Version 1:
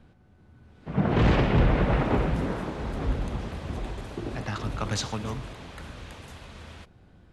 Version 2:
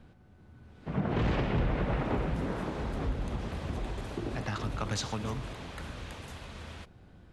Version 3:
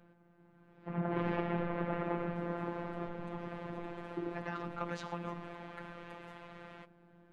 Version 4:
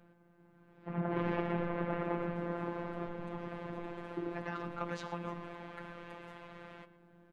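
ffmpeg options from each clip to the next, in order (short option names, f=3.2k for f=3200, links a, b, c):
-af "acompressor=threshold=-32dB:ratio=2"
-filter_complex "[0:a]acrossover=split=180 2500:gain=0.251 1 0.112[a][b][c];[a][b][c]amix=inputs=3:normalize=0,afftfilt=real='hypot(re,im)*cos(PI*b)':imag='0':win_size=1024:overlap=0.75,volume=1.5dB"
-filter_complex "[0:a]asplit=2[a][b];[b]adelay=120,highpass=300,lowpass=3.4k,asoftclip=type=hard:threshold=-28dB,volume=-15dB[c];[a][c]amix=inputs=2:normalize=0"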